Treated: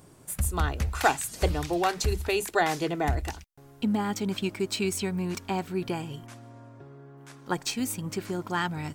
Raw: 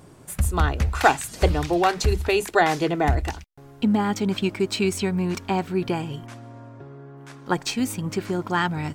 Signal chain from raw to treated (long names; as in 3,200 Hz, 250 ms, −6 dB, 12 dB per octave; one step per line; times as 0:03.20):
high-shelf EQ 6,300 Hz +8.5 dB
level −6 dB